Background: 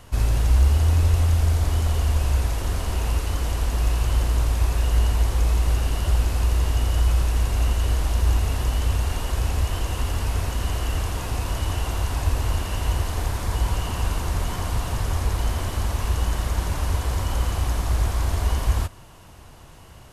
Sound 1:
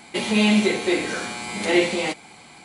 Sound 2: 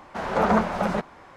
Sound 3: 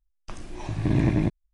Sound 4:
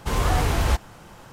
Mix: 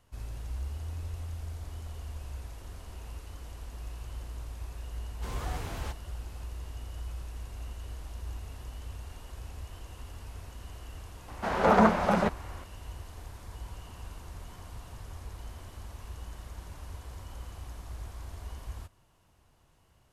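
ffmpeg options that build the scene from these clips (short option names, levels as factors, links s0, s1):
-filter_complex "[0:a]volume=0.106[s0];[4:a]atrim=end=1.32,asetpts=PTS-STARTPTS,volume=0.178,afade=t=in:d=0.004:c=hsin,afade=t=out:st=1.316:d=0.004:c=hsin,adelay=5160[s1];[2:a]atrim=end=1.36,asetpts=PTS-STARTPTS,volume=0.944,afade=t=in:d=0.004:c=hsin,afade=t=out:st=1.356:d=0.004:c=hsin,adelay=11280[s2];[s0][s1][s2]amix=inputs=3:normalize=0"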